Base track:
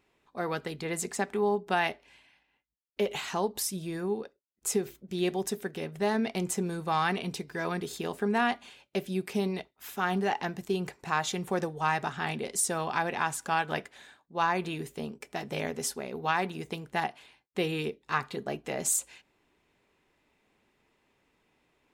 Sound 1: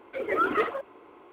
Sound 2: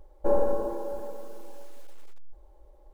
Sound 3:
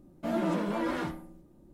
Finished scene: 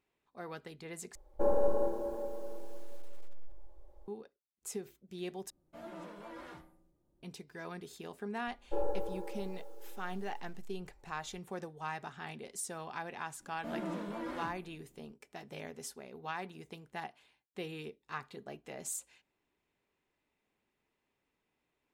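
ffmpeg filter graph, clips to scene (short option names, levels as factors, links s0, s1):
-filter_complex "[2:a]asplit=2[s0][s1];[3:a]asplit=2[s2][s3];[0:a]volume=0.251[s4];[s0]asplit=2[s5][s6];[s6]adelay=189,lowpass=f=2000:p=1,volume=0.531,asplit=2[s7][s8];[s8]adelay=189,lowpass=f=2000:p=1,volume=0.48,asplit=2[s9][s10];[s10]adelay=189,lowpass=f=2000:p=1,volume=0.48,asplit=2[s11][s12];[s12]adelay=189,lowpass=f=2000:p=1,volume=0.48,asplit=2[s13][s14];[s14]adelay=189,lowpass=f=2000:p=1,volume=0.48,asplit=2[s15][s16];[s16]adelay=189,lowpass=f=2000:p=1,volume=0.48[s17];[s5][s7][s9][s11][s13][s15][s17]amix=inputs=7:normalize=0[s18];[s2]equalizer=f=230:t=o:w=1:g=-9[s19];[s1]aecho=1:1:2.3:0.7[s20];[s4]asplit=3[s21][s22][s23];[s21]atrim=end=1.154[s24];[s18]atrim=end=2.93,asetpts=PTS-STARTPTS,volume=0.531[s25];[s22]atrim=start=4.076:end=5.504[s26];[s19]atrim=end=1.73,asetpts=PTS-STARTPTS,volume=0.188[s27];[s23]atrim=start=7.226[s28];[s20]atrim=end=2.93,asetpts=PTS-STARTPTS,volume=0.237,afade=t=in:d=0.004:c=hsin,afade=t=out:st=2.926:d=0.004:c=hsin,adelay=8470[s29];[s3]atrim=end=1.73,asetpts=PTS-STARTPTS,volume=0.335,afade=t=in:d=0.004:c=hsin,afade=t=out:st=1.726:d=0.004:c=hsin,adelay=13400[s30];[s24][s25]acrossfade=d=0.004:c1=hsin:c2=hsin[s31];[s31][s26]acrossfade=d=0.004:c1=hsin:c2=hsin[s32];[s32][s27]acrossfade=d=0.004:c1=hsin:c2=hsin[s33];[s33][s28]acrossfade=d=0.004:c1=hsin:c2=hsin[s34];[s34][s29][s30]amix=inputs=3:normalize=0"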